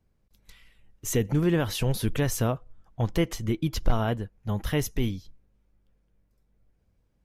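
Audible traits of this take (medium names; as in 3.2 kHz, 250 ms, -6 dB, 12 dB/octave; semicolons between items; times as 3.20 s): noise floor -70 dBFS; spectral tilt -5.5 dB/octave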